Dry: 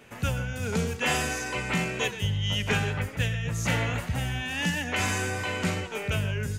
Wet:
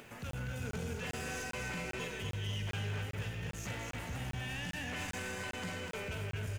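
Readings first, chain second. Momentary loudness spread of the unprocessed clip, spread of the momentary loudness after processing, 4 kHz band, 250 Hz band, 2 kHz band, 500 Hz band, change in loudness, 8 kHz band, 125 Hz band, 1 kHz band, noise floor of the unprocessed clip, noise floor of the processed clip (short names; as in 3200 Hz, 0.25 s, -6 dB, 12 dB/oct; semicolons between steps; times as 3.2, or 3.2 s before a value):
4 LU, 3 LU, -12.0 dB, -12.0 dB, -11.5 dB, -11.0 dB, -11.5 dB, -11.5 dB, -10.5 dB, -12.0 dB, -40 dBFS, -45 dBFS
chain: tracing distortion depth 0.022 ms; upward compressor, threshold -41 dBFS; limiter -23 dBFS, peak gain reduction 9.5 dB; added noise white -64 dBFS; soft clip -29 dBFS, distortion -15 dB; doubler 48 ms -11.5 dB; on a send: feedback echo 0.246 s, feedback 52%, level -5 dB; on the sum: crackling interface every 0.40 s, samples 1024, zero, from 0.31; gain -7 dB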